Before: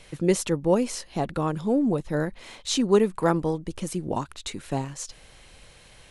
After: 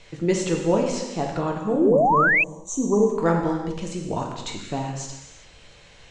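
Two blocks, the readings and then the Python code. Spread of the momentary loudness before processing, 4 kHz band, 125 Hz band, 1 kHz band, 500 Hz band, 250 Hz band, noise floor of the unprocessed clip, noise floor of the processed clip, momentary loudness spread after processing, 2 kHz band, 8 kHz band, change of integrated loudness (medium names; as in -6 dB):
14 LU, -2.5 dB, +1.5 dB, +7.5 dB, +3.0 dB, +1.5 dB, -53 dBFS, -50 dBFS, 14 LU, +14.0 dB, +0.5 dB, +3.5 dB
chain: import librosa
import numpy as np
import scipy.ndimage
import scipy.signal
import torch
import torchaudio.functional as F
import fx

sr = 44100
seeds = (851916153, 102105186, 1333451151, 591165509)

y = fx.spec_box(x, sr, start_s=1.58, length_s=1.51, low_hz=1200.0, high_hz=5700.0, gain_db=-29)
y = scipy.signal.sosfilt(scipy.signal.cheby1(4, 1.0, 7400.0, 'lowpass', fs=sr, output='sos'), y)
y = fx.rev_gated(y, sr, seeds[0], gate_ms=430, shape='falling', drr_db=0.5)
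y = fx.spec_paint(y, sr, seeds[1], shape='rise', start_s=1.73, length_s=0.71, low_hz=250.0, high_hz=2700.0, level_db=-18.0)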